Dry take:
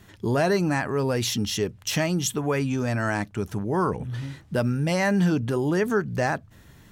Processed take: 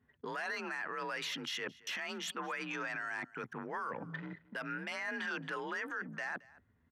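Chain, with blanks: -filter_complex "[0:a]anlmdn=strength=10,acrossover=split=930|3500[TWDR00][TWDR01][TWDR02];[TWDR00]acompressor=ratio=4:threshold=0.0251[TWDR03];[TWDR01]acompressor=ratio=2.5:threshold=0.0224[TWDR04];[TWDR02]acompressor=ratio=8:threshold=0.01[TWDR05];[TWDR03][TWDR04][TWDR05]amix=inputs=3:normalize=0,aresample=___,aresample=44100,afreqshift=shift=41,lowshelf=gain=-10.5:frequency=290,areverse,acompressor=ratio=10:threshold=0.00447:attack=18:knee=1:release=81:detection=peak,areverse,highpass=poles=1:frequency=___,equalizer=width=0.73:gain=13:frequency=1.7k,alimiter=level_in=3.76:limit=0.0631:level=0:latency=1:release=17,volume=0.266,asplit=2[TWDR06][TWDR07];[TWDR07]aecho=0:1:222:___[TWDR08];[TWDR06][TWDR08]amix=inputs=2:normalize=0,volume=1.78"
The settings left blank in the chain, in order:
32000, 190, 0.0841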